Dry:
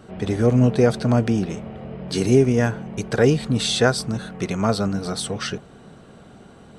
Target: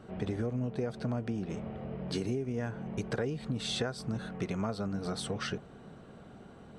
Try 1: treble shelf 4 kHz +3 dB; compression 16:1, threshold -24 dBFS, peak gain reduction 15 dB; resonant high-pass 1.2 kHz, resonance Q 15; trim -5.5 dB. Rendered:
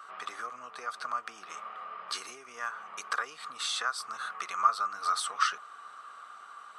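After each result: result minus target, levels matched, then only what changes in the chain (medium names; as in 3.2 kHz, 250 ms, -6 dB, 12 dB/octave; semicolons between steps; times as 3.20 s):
1 kHz band +12.0 dB; 8 kHz band +5.0 dB
remove: resonant high-pass 1.2 kHz, resonance Q 15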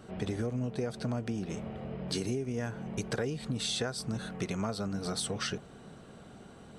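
8 kHz band +6.0 dB
change: treble shelf 4 kHz -8.5 dB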